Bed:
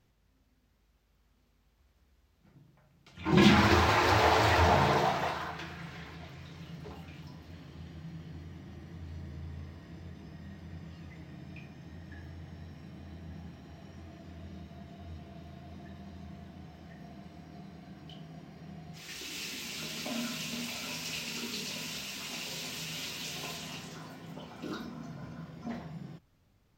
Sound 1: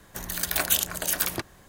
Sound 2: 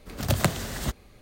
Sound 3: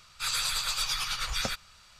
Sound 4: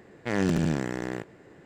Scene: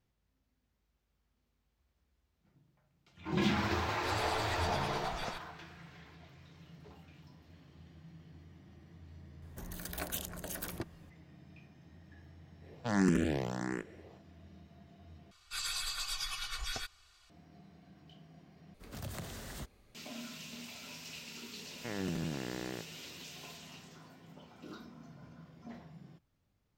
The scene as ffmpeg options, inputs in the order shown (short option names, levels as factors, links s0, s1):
-filter_complex "[3:a]asplit=2[s0][s1];[4:a]asplit=2[s2][s3];[0:a]volume=0.335[s4];[s0]highshelf=f=4300:g=-10[s5];[1:a]tiltshelf=f=740:g=6[s6];[s2]asplit=2[s7][s8];[s8]afreqshift=1.5[s9];[s7][s9]amix=inputs=2:normalize=1[s10];[s1]aecho=1:1:2.7:0.83[s11];[2:a]acompressor=threshold=0.0447:ratio=3:attack=0.19:release=40:knee=1:detection=peak[s12];[s3]alimiter=limit=0.0794:level=0:latency=1:release=71[s13];[s4]asplit=3[s14][s15][s16];[s14]atrim=end=15.314[s17];[s11]atrim=end=1.99,asetpts=PTS-STARTPTS,volume=0.299[s18];[s15]atrim=start=17.296:end=18.744[s19];[s12]atrim=end=1.21,asetpts=PTS-STARTPTS,volume=0.266[s20];[s16]atrim=start=19.946[s21];[s5]atrim=end=1.99,asetpts=PTS-STARTPTS,volume=0.316,afade=t=in:d=0.004:c=hsin,afade=t=out:st=1.986:d=0.004:c=hsin,adelay=3830[s22];[s6]atrim=end=1.68,asetpts=PTS-STARTPTS,volume=0.282,afade=t=in:d=0.004:c=hsin,afade=t=out:st=1.676:d=0.004:c=hsin,adelay=9420[s23];[s10]atrim=end=1.65,asetpts=PTS-STARTPTS,volume=0.891,afade=t=in:d=0.1,afade=t=out:st=1.55:d=0.1,adelay=12590[s24];[s13]atrim=end=1.65,asetpts=PTS-STARTPTS,volume=0.501,afade=t=in:d=0.004:c=hsin,afade=t=out:st=1.646:d=0.004:c=hsin,adelay=21590[s25];[s17][s18]acrossfade=d=0.004:c1=hsin:c2=hsin[s26];[s26][s19]acrossfade=d=0.004:c1=hsin:c2=hsin[s27];[s27][s20]acrossfade=d=0.004:c1=hsin:c2=hsin[s28];[s28][s21]acrossfade=d=0.004:c1=hsin:c2=hsin[s29];[s29][s22][s23][s24][s25]amix=inputs=5:normalize=0"